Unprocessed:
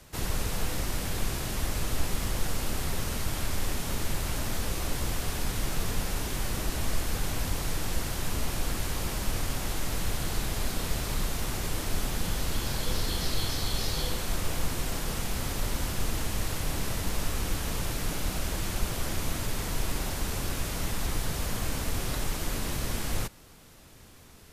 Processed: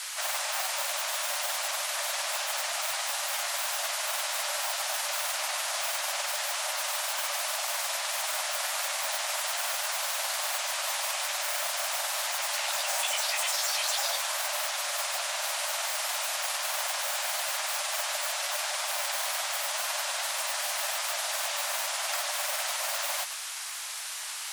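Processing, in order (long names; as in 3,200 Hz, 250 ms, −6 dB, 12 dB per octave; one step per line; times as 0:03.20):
granular cloud, pitch spread up and down by 12 semitones
noise in a band 860–11,000 Hz −44 dBFS
linear-phase brick-wall high-pass 550 Hz
level +6.5 dB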